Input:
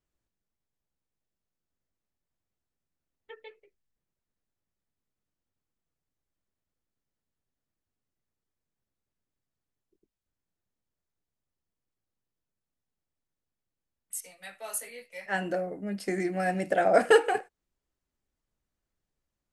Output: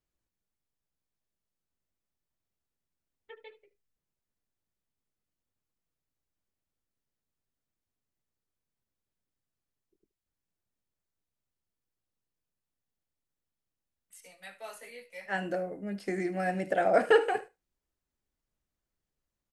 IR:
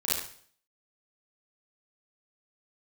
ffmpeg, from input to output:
-filter_complex "[0:a]asplit=2[s0][s1];[s1]aecho=0:1:74:0.1[s2];[s0][s2]amix=inputs=2:normalize=0,acrossover=split=4200[s3][s4];[s4]acompressor=threshold=0.00282:ratio=4:attack=1:release=60[s5];[s3][s5]amix=inputs=2:normalize=0,asplit=2[s6][s7];[s7]aecho=0:1:76:0.0891[s8];[s6][s8]amix=inputs=2:normalize=0,volume=0.75"

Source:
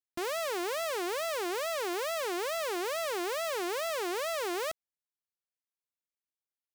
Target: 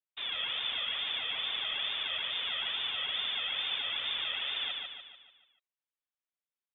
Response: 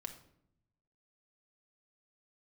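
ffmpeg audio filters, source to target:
-af "lowpass=f=3300:t=q:w=0.5098,lowpass=f=3300:t=q:w=0.6013,lowpass=f=3300:t=q:w=0.9,lowpass=f=3300:t=q:w=2.563,afreqshift=-3900,afftfilt=real='hypot(re,im)*cos(2*PI*random(0))':imag='hypot(re,im)*sin(2*PI*random(1))':win_size=512:overlap=0.75,aecho=1:1:146|292|438|584|730|876:0.668|0.321|0.154|0.0739|0.0355|0.017,volume=1.41"

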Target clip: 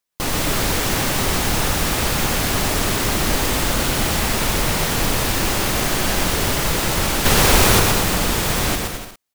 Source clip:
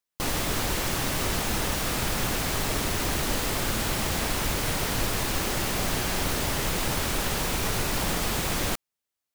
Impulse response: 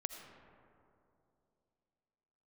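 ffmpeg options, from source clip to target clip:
-filter_complex "[0:a]asettb=1/sr,asplit=3[s0][s1][s2];[s0]atrim=end=7.254[s3];[s1]atrim=start=7.25:end=7.8,asetpts=PTS-STARTPTS,afade=t=in:d=0.004:c=qsin,afade=t=out:st=0.546:d=0.004:c=qsin,acontrast=79[s4];[s2]atrim=start=7.796[s5];[s3][s4]acrossfade=d=0.004:c1=hsin:c2=qsin[s6];[s6][s5]acrossfade=d=0.004:c1=qsin:c2=hsin,asplit=2[s7][s8];[s8]aecho=0:1:120|216|292.8|354.2|403.4:0.631|0.398|0.251|0.158|0.1[s9];[s7][s9]amix=inputs=2:normalize=0,volume=1.88"

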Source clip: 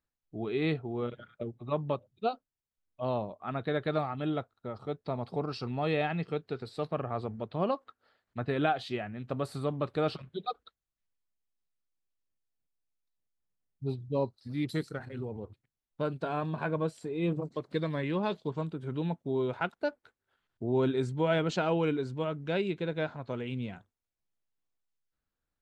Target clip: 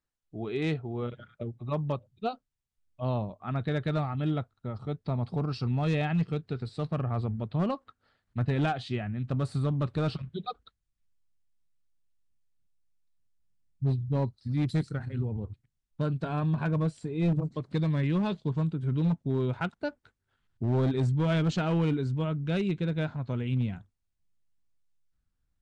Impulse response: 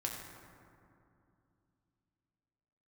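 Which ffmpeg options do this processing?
-af "asubboost=boost=4:cutoff=210,asoftclip=type=hard:threshold=0.0841,aresample=22050,aresample=44100"

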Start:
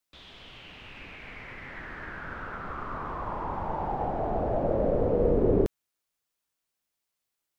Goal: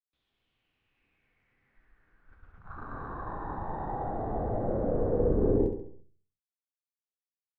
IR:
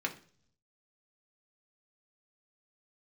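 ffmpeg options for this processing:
-filter_complex "[0:a]agate=range=0.282:threshold=0.0158:ratio=16:detection=peak,afwtdn=0.02,lowshelf=f=220:g=7,aecho=1:1:68|136|204|272|340:0.376|0.177|0.083|0.039|0.0183,asplit=2[s0][s1];[1:a]atrim=start_sample=2205,afade=t=out:st=0.44:d=0.01,atrim=end_sample=19845[s2];[s1][s2]afir=irnorm=-1:irlink=0,volume=0.501[s3];[s0][s3]amix=inputs=2:normalize=0,volume=0.355"

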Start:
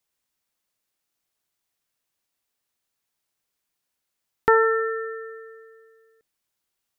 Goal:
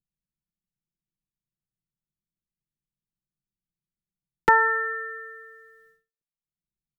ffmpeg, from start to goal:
-filter_complex "[0:a]agate=range=0.00631:threshold=0.00178:ratio=16:detection=peak,aecho=1:1:5.7:0.87,acrossover=split=220[s0][s1];[s0]acompressor=mode=upward:threshold=0.00112:ratio=2.5[s2];[s2][s1]amix=inputs=2:normalize=0"

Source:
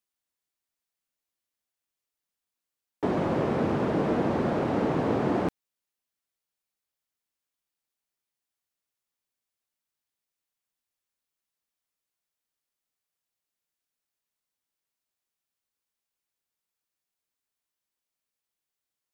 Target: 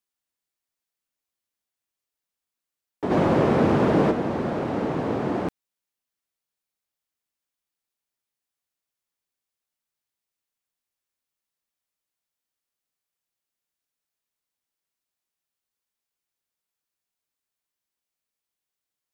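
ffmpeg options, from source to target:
-filter_complex "[0:a]asplit=3[s0][s1][s2];[s0]afade=t=out:st=3.1:d=0.02[s3];[s1]acontrast=79,afade=t=in:st=3.1:d=0.02,afade=t=out:st=4.1:d=0.02[s4];[s2]afade=t=in:st=4.1:d=0.02[s5];[s3][s4][s5]amix=inputs=3:normalize=0"

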